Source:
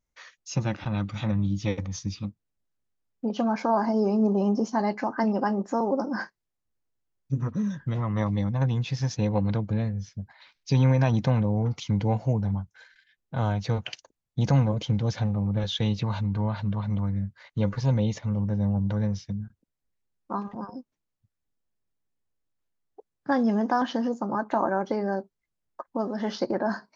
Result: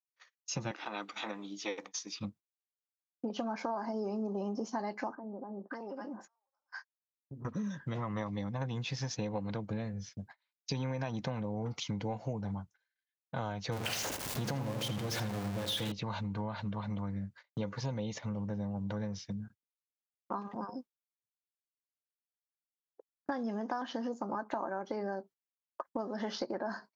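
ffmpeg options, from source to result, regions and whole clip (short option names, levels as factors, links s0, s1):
-filter_complex "[0:a]asettb=1/sr,asplit=3[s0][s1][s2];[s0]atrim=end=0.714[s3];[s1]atrim=start=0.71:end=2.2,asetpts=PTS-STARTPTS,afade=t=in:d=0.004:c=qsin,afade=t=out:st=1.486:d=0.004:c=qsin,highpass=f=320:w=0.5412,highpass=f=320:w=1.3066,bandreject=f=560:w=6.2[s4];[s2]atrim=start=2.196[s5];[s3][s4]acrossfade=d=0.004:c1=hsin:c2=qsin[s6];[s6][s5]acrossfade=d=0.004:c1=qsin:c2=hsin,asettb=1/sr,asplit=3[s7][s8][s9];[s7]atrim=end=5.154[s10];[s8]atrim=start=5.15:end=7.45,asetpts=PTS-STARTPTS,afade=t=in:d=0.004:c=qsin,afade=t=out:st=2.296:d=0.004:c=qsin,acompressor=threshold=0.0178:ratio=16:attack=3.2:release=140:knee=1:detection=peak,acrossover=split=920[s11][s12];[s12]adelay=550[s13];[s11][s13]amix=inputs=2:normalize=0,atrim=end_sample=101430[s14];[s9]atrim=start=7.446[s15];[s10][s14]acrossfade=d=0.004:c1=hsin:c2=qsin[s16];[s16][s15]acrossfade=d=0.004:c1=qsin:c2=hsin,asettb=1/sr,asplit=3[s17][s18][s19];[s17]atrim=end=13.724[s20];[s18]atrim=start=13.72:end=15.92,asetpts=PTS-STARTPTS,afade=t=in:d=0.004:c=qsin,afade=t=out:st=2.196:d=0.004:c=qsin,aeval=exprs='val(0)+0.5*0.0501*sgn(val(0))':c=same,asplit=2[s21][s22];[s22]adelay=81,lowpass=f=2600:p=1,volume=0.447,asplit=2[s23][s24];[s24]adelay=81,lowpass=f=2600:p=1,volume=0.54,asplit=2[s25][s26];[s26]adelay=81,lowpass=f=2600:p=1,volume=0.54,asplit=2[s27][s28];[s28]adelay=81,lowpass=f=2600:p=1,volume=0.54,asplit=2[s29][s30];[s30]adelay=81,lowpass=f=2600:p=1,volume=0.54,asplit=2[s31][s32];[s32]adelay=81,lowpass=f=2600:p=1,volume=0.54,asplit=2[s33][s34];[s34]adelay=81,lowpass=f=2600:p=1,volume=0.54[s35];[s21][s23][s25][s27][s29][s31][s33][s35]amix=inputs=8:normalize=0,atrim=end_sample=97020[s36];[s19]atrim=start=15.916[s37];[s20][s36]acrossfade=d=0.004:c1=hsin:c2=qsin[s38];[s38][s37]acrossfade=d=0.004:c1=qsin:c2=hsin,agate=range=0.0251:threshold=0.00631:ratio=16:detection=peak,highpass=f=280:p=1,acompressor=threshold=0.0224:ratio=6"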